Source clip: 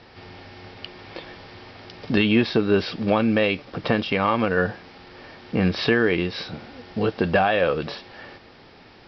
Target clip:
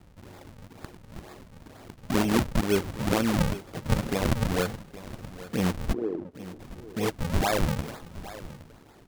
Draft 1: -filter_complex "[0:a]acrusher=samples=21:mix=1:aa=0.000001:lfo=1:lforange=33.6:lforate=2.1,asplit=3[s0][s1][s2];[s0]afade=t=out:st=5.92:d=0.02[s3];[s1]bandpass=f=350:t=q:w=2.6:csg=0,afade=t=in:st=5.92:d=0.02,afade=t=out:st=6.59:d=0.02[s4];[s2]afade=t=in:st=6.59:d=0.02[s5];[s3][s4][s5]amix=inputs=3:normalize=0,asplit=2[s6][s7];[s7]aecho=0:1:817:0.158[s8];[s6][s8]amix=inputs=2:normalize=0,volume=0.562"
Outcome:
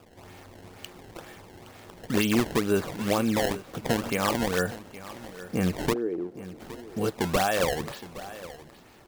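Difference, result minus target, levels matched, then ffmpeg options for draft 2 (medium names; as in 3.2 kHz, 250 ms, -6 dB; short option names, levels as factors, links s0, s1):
decimation with a swept rate: distortion -10 dB
-filter_complex "[0:a]acrusher=samples=73:mix=1:aa=0.000001:lfo=1:lforange=117:lforate=2.1,asplit=3[s0][s1][s2];[s0]afade=t=out:st=5.92:d=0.02[s3];[s1]bandpass=f=350:t=q:w=2.6:csg=0,afade=t=in:st=5.92:d=0.02,afade=t=out:st=6.59:d=0.02[s4];[s2]afade=t=in:st=6.59:d=0.02[s5];[s3][s4][s5]amix=inputs=3:normalize=0,asplit=2[s6][s7];[s7]aecho=0:1:817:0.158[s8];[s6][s8]amix=inputs=2:normalize=0,volume=0.562"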